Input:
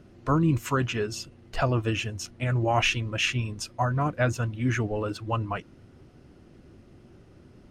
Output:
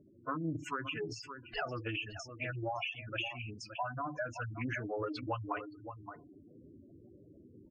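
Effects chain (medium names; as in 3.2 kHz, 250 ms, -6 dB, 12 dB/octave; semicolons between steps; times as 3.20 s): gain riding within 4 dB 0.5 s; tilt EQ +3.5 dB/octave; compression 16:1, threshold -32 dBFS, peak gain reduction 16.5 dB; delay 570 ms -9.5 dB; FDN reverb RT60 0.6 s, low-frequency decay 1.1×, high-frequency decay 0.35×, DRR 9.5 dB; level-controlled noise filter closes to 530 Hz, open at -31.5 dBFS; de-hum 145.4 Hz, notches 3; spectral gate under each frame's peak -10 dB strong; low-pass 3.3 kHz 12 dB/octave; loudspeaker Doppler distortion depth 0.19 ms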